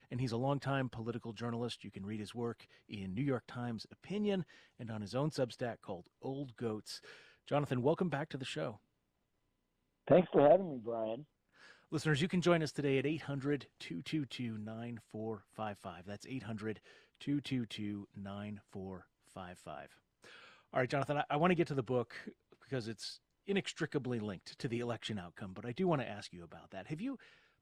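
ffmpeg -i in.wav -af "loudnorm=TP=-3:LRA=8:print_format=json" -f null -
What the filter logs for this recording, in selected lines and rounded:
"input_i" : "-38.0",
"input_tp" : "-15.3",
"input_lra" : "8.9",
"input_thresh" : "-48.7",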